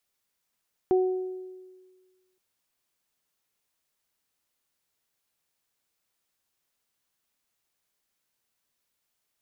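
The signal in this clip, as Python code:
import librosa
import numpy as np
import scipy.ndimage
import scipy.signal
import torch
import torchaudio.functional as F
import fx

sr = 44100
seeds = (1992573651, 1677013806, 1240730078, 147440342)

y = fx.additive(sr, length_s=1.47, hz=371.0, level_db=-17.5, upper_db=(-11,), decay_s=1.55, upper_decays_s=(0.88,))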